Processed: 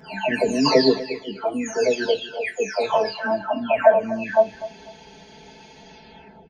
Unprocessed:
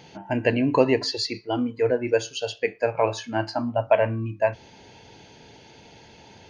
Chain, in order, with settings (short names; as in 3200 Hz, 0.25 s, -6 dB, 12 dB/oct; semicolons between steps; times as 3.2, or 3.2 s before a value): spectral delay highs early, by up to 0.678 s; comb 4.6 ms, depth 82%; on a send: feedback echo 0.247 s, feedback 25%, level -16 dB; on the sum: gain +2.5 dB